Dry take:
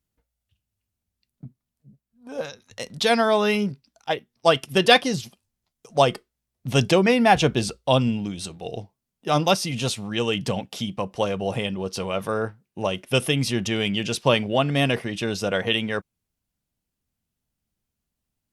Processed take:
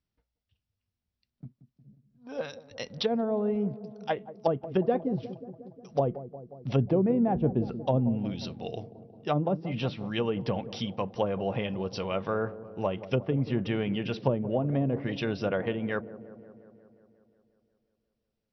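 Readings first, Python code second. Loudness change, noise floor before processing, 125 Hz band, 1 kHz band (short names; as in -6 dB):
-7.5 dB, -83 dBFS, -3.5 dB, -10.5 dB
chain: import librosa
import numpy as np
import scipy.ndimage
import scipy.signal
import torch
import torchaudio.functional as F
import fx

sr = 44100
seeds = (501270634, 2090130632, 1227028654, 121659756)

y = fx.env_lowpass_down(x, sr, base_hz=450.0, full_db=-16.5)
y = fx.brickwall_lowpass(y, sr, high_hz=5900.0)
y = fx.echo_wet_lowpass(y, sr, ms=179, feedback_pct=67, hz=780.0, wet_db=-13.5)
y = y * 10.0 ** (-4.0 / 20.0)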